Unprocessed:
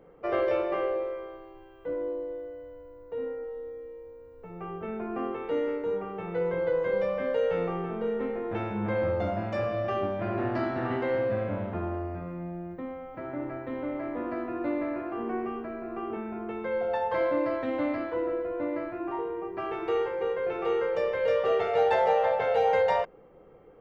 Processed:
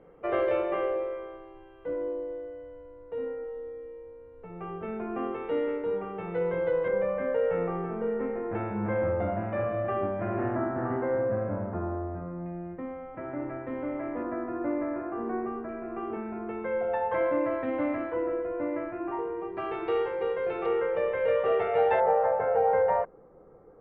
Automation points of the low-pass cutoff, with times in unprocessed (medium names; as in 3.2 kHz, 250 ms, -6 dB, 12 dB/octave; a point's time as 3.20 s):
low-pass 24 dB/octave
3.4 kHz
from 6.88 s 2.2 kHz
from 10.55 s 1.6 kHz
from 12.46 s 2.6 kHz
from 14.23 s 1.9 kHz
from 15.69 s 2.6 kHz
from 19.41 s 4.1 kHz
from 20.66 s 2.7 kHz
from 22.00 s 1.6 kHz